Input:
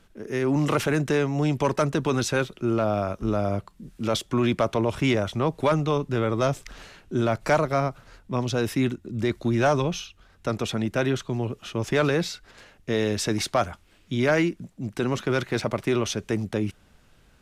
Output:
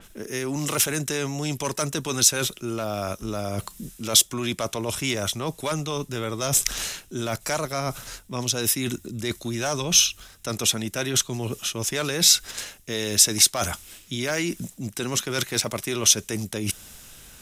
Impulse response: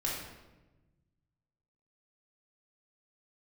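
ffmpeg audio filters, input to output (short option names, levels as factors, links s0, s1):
-af "areverse,acompressor=threshold=0.0224:ratio=5,areverse,bandreject=f=4500:w=11,acompressor=mode=upward:threshold=0.002:ratio=2.5,crystalizer=i=4.5:c=0,adynamicequalizer=threshold=0.002:dfrequency=3600:dqfactor=0.7:tfrequency=3600:tqfactor=0.7:attack=5:release=100:ratio=0.375:range=3:mode=boostabove:tftype=highshelf,volume=2"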